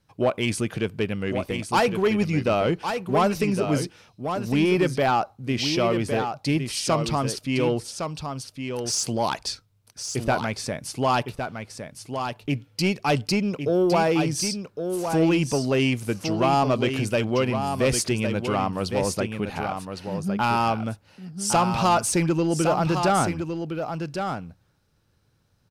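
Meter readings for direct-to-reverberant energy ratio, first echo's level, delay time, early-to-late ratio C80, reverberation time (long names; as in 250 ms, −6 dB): no reverb audible, −7.0 dB, 1,110 ms, no reverb audible, no reverb audible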